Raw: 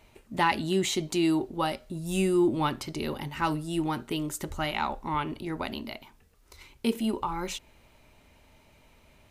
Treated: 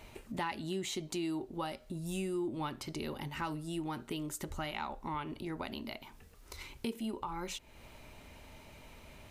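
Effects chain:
downward compressor 2.5 to 1, threshold −48 dBFS, peak gain reduction 18.5 dB
level +5 dB

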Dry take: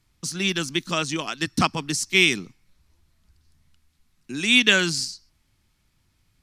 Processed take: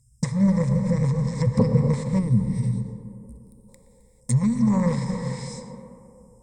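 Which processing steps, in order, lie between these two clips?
linear-phase brick-wall band-stop 210–5,000 Hz
leveller curve on the samples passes 3
EQ curve with evenly spaced ripples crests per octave 0.98, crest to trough 17 dB
tape delay 118 ms, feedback 85%, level −12 dB, low-pass 1,700 Hz
reverb whose tail is shaped and stops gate 470 ms flat, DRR 7 dB
in parallel at +2.5 dB: downward compressor, threshold −34 dBFS, peak gain reduction 18.5 dB
on the sum: brickwall limiter −11 dBFS, peak gain reduction 6.5 dB
gain on a spectral selection 0:02.19–0:03.69, 470–8,400 Hz −11 dB
treble cut that deepens with the level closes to 1,400 Hz, closed at −21 dBFS
level +5 dB

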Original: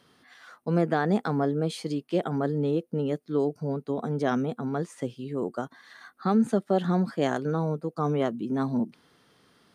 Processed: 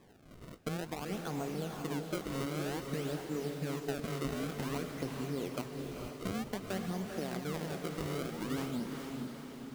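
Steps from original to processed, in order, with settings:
downward compressor 10 to 1, threshold −35 dBFS, peak gain reduction 17 dB
sample-and-hold swept by an LFO 30×, swing 160% 0.53 Hz
feedback delay with all-pass diffusion 458 ms, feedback 55%, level −4 dB

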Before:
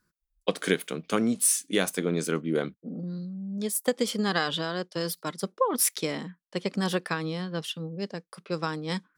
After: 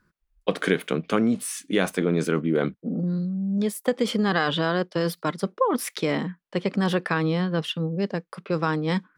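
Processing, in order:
in parallel at −2 dB: compressor whose output falls as the input rises −31 dBFS, ratio −1
on the sum: bass and treble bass +1 dB, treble −13 dB
level +1.5 dB

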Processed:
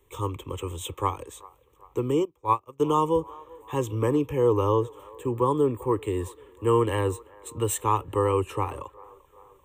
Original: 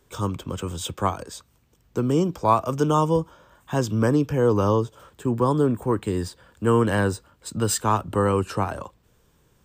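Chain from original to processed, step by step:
phaser with its sweep stopped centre 1,000 Hz, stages 8
delay with a band-pass on its return 389 ms, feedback 57%, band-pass 890 Hz, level −21 dB
0:02.25–0:02.80: expander for the loud parts 2.5 to 1, over −33 dBFS

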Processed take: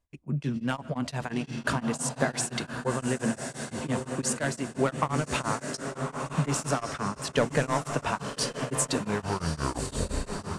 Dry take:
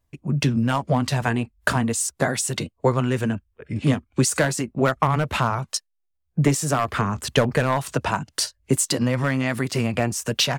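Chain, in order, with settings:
turntable brake at the end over 1.77 s
low-pass filter 11,000 Hz 24 dB per octave
parametric band 110 Hz −11 dB 0.26 octaves
on a send: feedback delay with all-pass diffusion 1,156 ms, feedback 50%, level −5.5 dB
on the sum: comb and all-pass reverb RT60 1.1 s, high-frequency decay 0.65×, pre-delay 95 ms, DRR 19 dB
tremolo along a rectified sine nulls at 5.8 Hz
level −4.5 dB

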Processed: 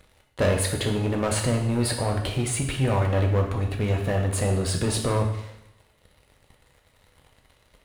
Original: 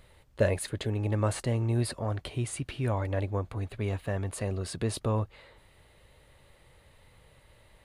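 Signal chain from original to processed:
leveller curve on the samples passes 3
coupled-rooms reverb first 0.79 s, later 2 s, from −27 dB, DRR 1.5 dB
level −3 dB

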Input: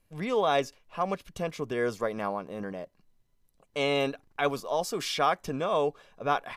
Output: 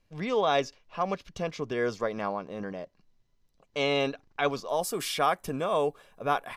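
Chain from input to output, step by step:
high shelf with overshoot 7,600 Hz −10 dB, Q 1.5, from 0:04.69 +6 dB

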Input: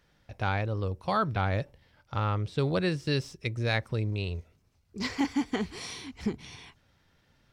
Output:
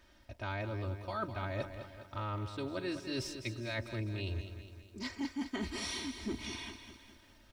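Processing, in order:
comb filter 3.2 ms, depth 97%
reversed playback
downward compressor 6 to 1, threshold −37 dBFS, peak gain reduction 18 dB
reversed playback
feedback echo at a low word length 205 ms, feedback 55%, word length 11 bits, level −9.5 dB
level +1 dB

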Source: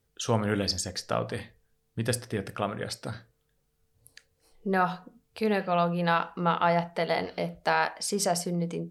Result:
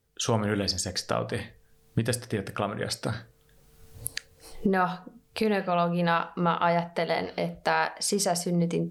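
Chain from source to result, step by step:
camcorder AGC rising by 19 dB per second

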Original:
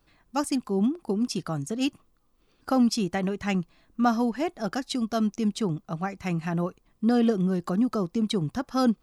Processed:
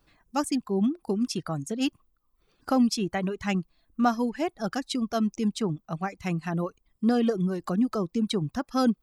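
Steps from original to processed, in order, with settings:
reverb reduction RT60 0.76 s

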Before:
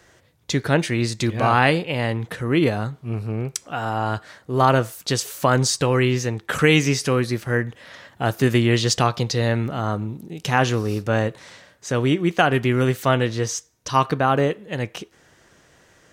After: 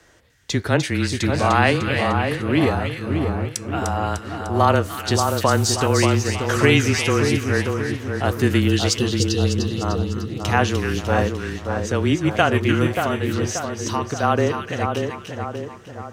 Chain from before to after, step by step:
0:08.68–0:09.82: gain on a spectral selection 550–2,600 Hz −21 dB
0:12.86–0:14.23: downward compressor 4 to 1, threshold −22 dBFS, peak gain reduction 9 dB
echo with a time of its own for lows and highs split 1,500 Hz, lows 582 ms, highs 300 ms, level −5 dB
frequency shifter −23 Hz

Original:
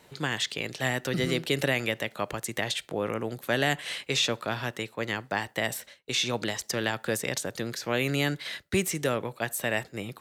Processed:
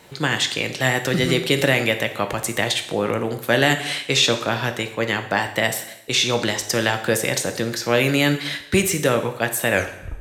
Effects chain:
turntable brake at the end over 0.50 s
coupled-rooms reverb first 0.75 s, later 2 s, from −23 dB, DRR 6.5 dB
level +8 dB

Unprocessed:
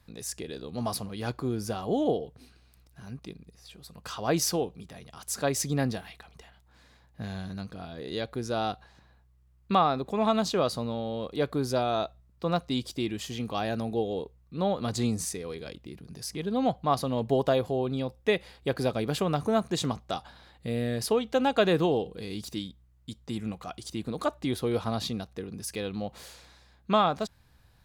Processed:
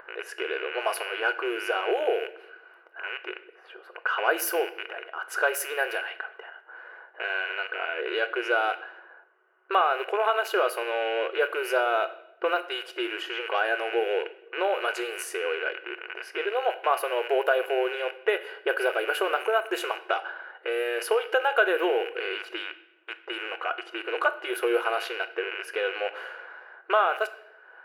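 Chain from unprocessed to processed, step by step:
loose part that buzzes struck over −43 dBFS, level −30 dBFS
low-pass that shuts in the quiet parts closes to 1,500 Hz, open at −24 dBFS
hollow resonant body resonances 1,500/2,900 Hz, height 17 dB, ringing for 25 ms
upward compression, threshold −45 dBFS
high-shelf EQ 9,400 Hz +8.5 dB
downward compressor 2.5 to 1, threshold −32 dBFS, peak gain reduction 12.5 dB
linear-phase brick-wall high-pass 340 Hz
flat-topped bell 5,200 Hz −14.5 dB
convolution reverb RT60 0.85 s, pre-delay 6 ms, DRR 10.5 dB
level +9 dB

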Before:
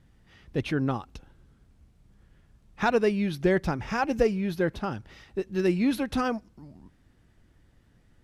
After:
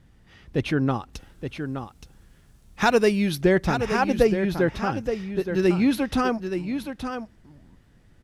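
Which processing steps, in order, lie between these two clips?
0:01.13–0:03.41: high-shelf EQ 4,700 Hz +11.5 dB
single-tap delay 872 ms −8 dB
level +4 dB

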